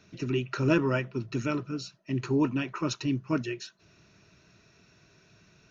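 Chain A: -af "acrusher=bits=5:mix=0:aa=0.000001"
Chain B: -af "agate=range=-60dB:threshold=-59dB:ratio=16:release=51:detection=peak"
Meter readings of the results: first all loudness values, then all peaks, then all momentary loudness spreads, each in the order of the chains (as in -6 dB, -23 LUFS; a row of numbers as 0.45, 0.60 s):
-29.5, -30.0 LUFS; -12.0, -11.5 dBFS; 11, 12 LU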